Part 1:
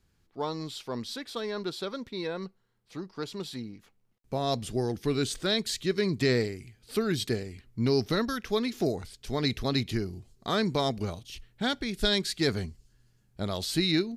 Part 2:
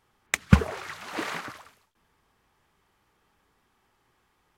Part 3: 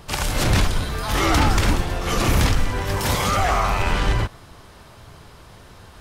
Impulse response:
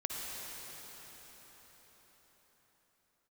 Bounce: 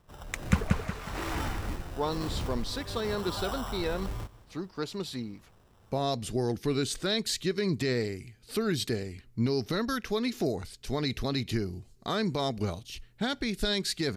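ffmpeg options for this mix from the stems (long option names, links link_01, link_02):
-filter_complex "[0:a]alimiter=limit=-20dB:level=0:latency=1:release=126,adelay=1600,volume=-2.5dB[link_01];[1:a]volume=-10.5dB,asplit=2[link_02][link_03];[link_03]volume=-3.5dB[link_04];[2:a]lowpass=1400,acrusher=samples=20:mix=1:aa=0.000001,volume=-20dB,asplit=2[link_05][link_06];[link_06]volume=-20dB[link_07];[link_04][link_07]amix=inputs=2:normalize=0,aecho=0:1:181|362|543|724|905:1|0.35|0.122|0.0429|0.015[link_08];[link_01][link_02][link_05][link_08]amix=inputs=4:normalize=0,bandreject=frequency=3300:width=27,dynaudnorm=framelen=120:gausssize=9:maxgain=4dB"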